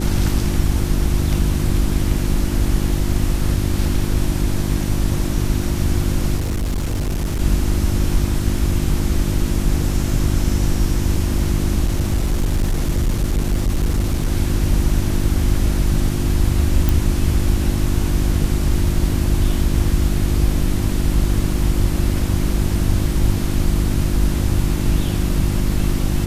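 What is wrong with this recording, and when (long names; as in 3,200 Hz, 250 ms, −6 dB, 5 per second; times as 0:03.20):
mains hum 50 Hz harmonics 7 −22 dBFS
0:06.37–0:07.40: clipping −17.5 dBFS
0:11.86–0:14.32: clipping −13.5 dBFS
0:16.89: click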